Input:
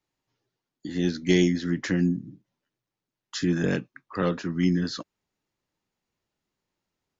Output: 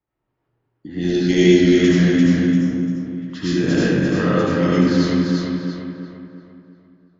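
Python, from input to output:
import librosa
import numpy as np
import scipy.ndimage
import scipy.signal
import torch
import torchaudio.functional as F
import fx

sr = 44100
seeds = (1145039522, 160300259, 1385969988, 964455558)

p1 = x + fx.echo_feedback(x, sr, ms=345, feedback_pct=47, wet_db=-3.5, dry=0)
p2 = fx.spec_box(p1, sr, start_s=2.45, length_s=0.61, low_hz=1400.0, high_hz=5100.0, gain_db=-9)
p3 = scipy.signal.sosfilt(scipy.signal.butter(2, 40.0, 'highpass', fs=sr, output='sos'), p2)
p4 = fx.low_shelf(p3, sr, hz=82.0, db=10.5)
p5 = fx.rev_freeverb(p4, sr, rt60_s=1.8, hf_ratio=0.55, predelay_ms=45, drr_db=-8.0)
p6 = fx.env_lowpass(p5, sr, base_hz=1700.0, full_db=-12.5)
y = p6 * 10.0 ** (-1.0 / 20.0)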